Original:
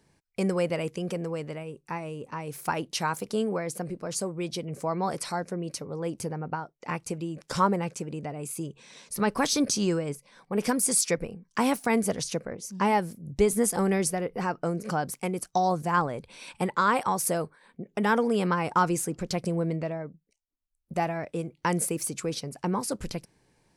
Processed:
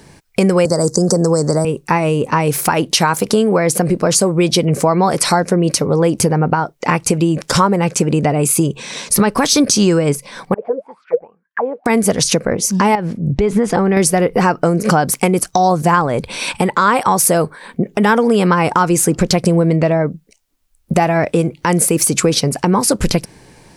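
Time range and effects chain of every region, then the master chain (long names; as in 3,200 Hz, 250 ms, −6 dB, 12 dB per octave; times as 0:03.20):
0:00.65–0:01.65: Butterworth band-reject 2,700 Hz, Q 0.68 + flat-topped bell 5,900 Hz +13 dB 1.3 octaves + multiband upward and downward compressor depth 70%
0:10.54–0:11.86: high-frequency loss of the air 480 metres + envelope filter 470–2,200 Hz, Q 16, down, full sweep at −22.5 dBFS
0:12.95–0:13.97: low-pass filter 2,900 Hz + downward compressor 4 to 1, threshold −30 dBFS
whole clip: downward compressor, threshold −32 dBFS; boost into a limiter +23.5 dB; level −1 dB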